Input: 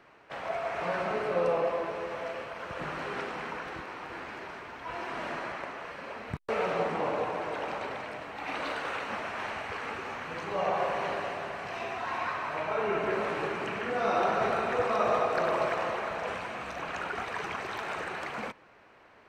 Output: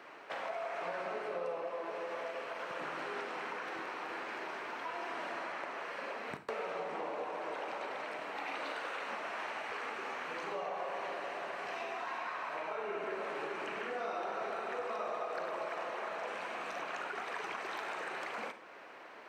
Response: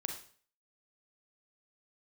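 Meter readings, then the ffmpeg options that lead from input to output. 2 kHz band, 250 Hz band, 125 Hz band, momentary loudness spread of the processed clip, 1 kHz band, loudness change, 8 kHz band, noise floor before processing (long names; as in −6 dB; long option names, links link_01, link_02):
−5.5 dB, −10.0 dB, −17.5 dB, 3 LU, −7.0 dB, −7.0 dB, −5.5 dB, −57 dBFS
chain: -filter_complex "[0:a]highpass=300,acompressor=threshold=-45dB:ratio=4,asplit=2[link_01][link_02];[1:a]atrim=start_sample=2205[link_03];[link_02][link_03]afir=irnorm=-1:irlink=0,volume=0dB[link_04];[link_01][link_04]amix=inputs=2:normalize=0"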